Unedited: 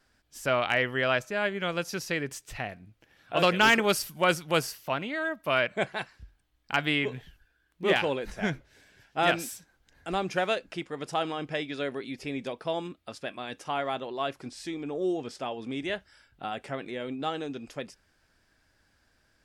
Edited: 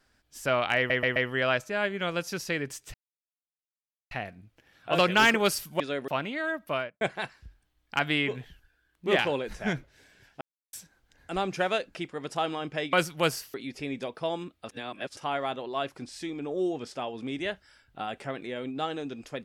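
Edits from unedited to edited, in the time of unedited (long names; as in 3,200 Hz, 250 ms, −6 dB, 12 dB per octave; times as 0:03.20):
0:00.77: stutter 0.13 s, 4 plays
0:02.55: splice in silence 1.17 s
0:04.24–0:04.85: swap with 0:11.70–0:11.98
0:05.40–0:05.78: fade out and dull
0:09.18–0:09.50: silence
0:13.13–0:13.61: reverse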